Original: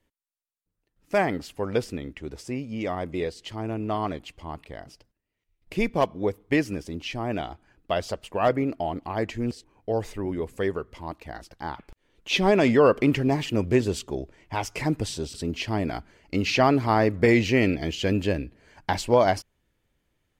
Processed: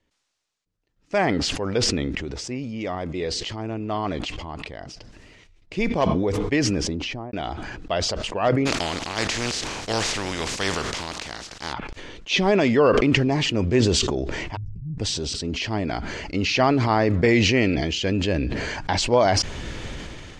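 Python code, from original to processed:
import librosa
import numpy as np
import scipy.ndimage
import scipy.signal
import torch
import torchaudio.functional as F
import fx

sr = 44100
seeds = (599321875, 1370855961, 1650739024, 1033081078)

y = fx.studio_fade_out(x, sr, start_s=6.57, length_s=0.76)
y = fx.spec_flatten(y, sr, power=0.36, at=(8.65, 11.72), fade=0.02)
y = fx.cheby2_lowpass(y, sr, hz=530.0, order=4, stop_db=60, at=(14.55, 14.98), fade=0.02)
y = scipy.signal.sosfilt(scipy.signal.butter(4, 6600.0, 'lowpass', fs=sr, output='sos'), y)
y = fx.high_shelf(y, sr, hz=4400.0, db=5.5)
y = fx.sustainer(y, sr, db_per_s=22.0)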